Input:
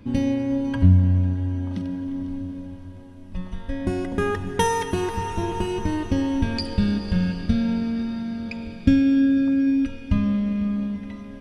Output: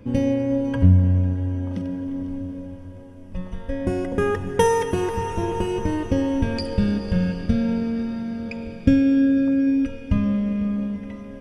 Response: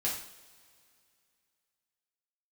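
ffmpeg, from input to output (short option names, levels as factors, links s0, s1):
-af "equalizer=f=125:t=o:w=0.33:g=4,equalizer=f=500:t=o:w=0.33:g=11,equalizer=f=4000:t=o:w=0.33:g=-9"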